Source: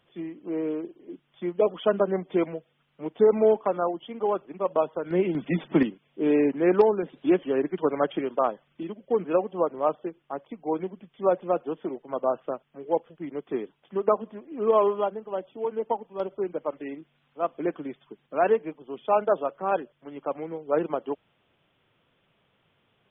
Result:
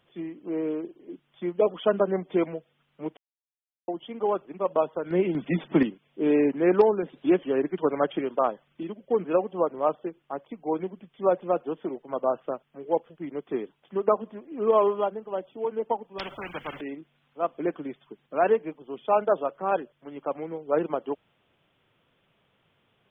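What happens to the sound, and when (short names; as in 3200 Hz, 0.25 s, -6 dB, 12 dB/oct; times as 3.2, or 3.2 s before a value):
3.17–3.88 mute
16.18–16.81 spectral compressor 4:1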